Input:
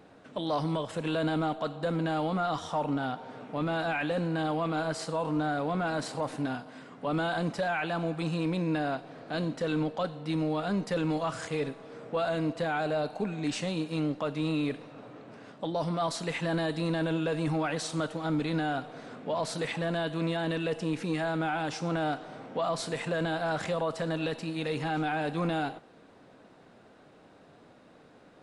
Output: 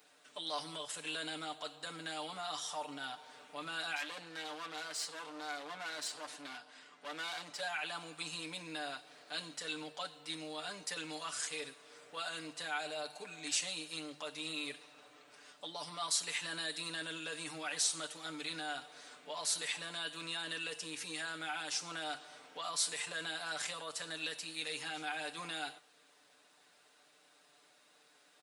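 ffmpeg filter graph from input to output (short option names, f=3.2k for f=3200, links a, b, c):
-filter_complex "[0:a]asettb=1/sr,asplit=3[a][b][c];[a]atrim=end=3.964[d];[b]atrim=start=3.96:end=7.6,asetpts=PTS-STARTPTS,afade=t=in:d=0.004:c=qsin,afade=t=out:st=3.636:d=0.004:c=qsin,highpass=150,aeval=exprs='clip(val(0),-1,0.0158)':c=same,adynamicsmooth=sensitivity=5:basefreq=6.8k[e];[c]atrim=start=7.596[f];[d][e]acrossfade=d=0.004:c1=hsin:c2=qsin[g];[g][f]acrossfade=d=0.004:c1=qsin:c2=hsin,aderivative,bandreject=f=50:t=h:w=6,bandreject=f=100:t=h:w=6,bandreject=f=150:t=h:w=6,aecho=1:1:6.8:0.69,volume=5.5dB"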